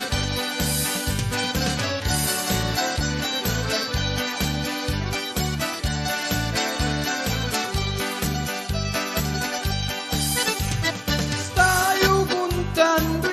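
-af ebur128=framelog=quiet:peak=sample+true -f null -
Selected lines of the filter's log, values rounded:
Integrated loudness:
  I:         -23.1 LUFS
  Threshold: -33.1 LUFS
Loudness range:
  LRA:         3.1 LU
  Threshold: -43.5 LUFS
  LRA low:   -24.6 LUFS
  LRA high:  -21.5 LUFS
Sample peak:
  Peak:       -3.5 dBFS
True peak:
  Peak:       -3.4 dBFS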